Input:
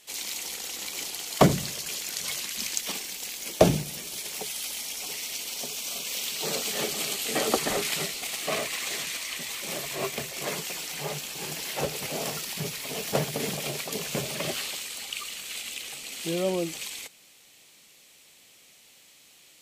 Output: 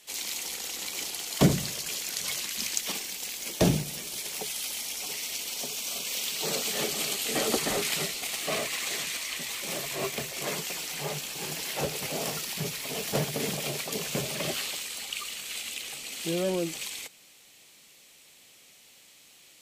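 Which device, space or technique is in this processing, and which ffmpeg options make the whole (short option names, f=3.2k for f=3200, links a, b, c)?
one-band saturation: -filter_complex "[0:a]acrossover=split=390|2500[a][b][c];[b]asoftclip=type=tanh:threshold=-26.5dB[d];[a][d][c]amix=inputs=3:normalize=0"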